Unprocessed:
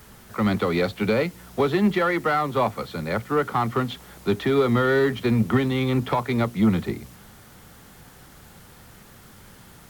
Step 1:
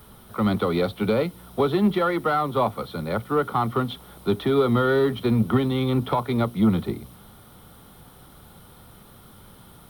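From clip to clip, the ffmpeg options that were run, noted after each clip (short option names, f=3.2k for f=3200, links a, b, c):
-af "superequalizer=11b=0.398:12b=0.501:14b=0.447:15b=0.251"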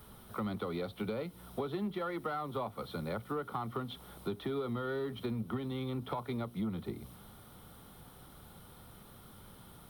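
-af "acompressor=threshold=-29dB:ratio=4,volume=-6dB"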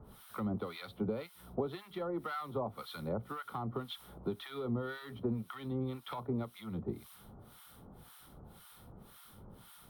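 -filter_complex "[0:a]acrossover=split=1000[a][b];[a]aeval=exprs='val(0)*(1-1/2+1/2*cos(2*PI*1.9*n/s))':c=same[c];[b]aeval=exprs='val(0)*(1-1/2-1/2*cos(2*PI*1.9*n/s))':c=same[d];[c][d]amix=inputs=2:normalize=0,volume=3dB"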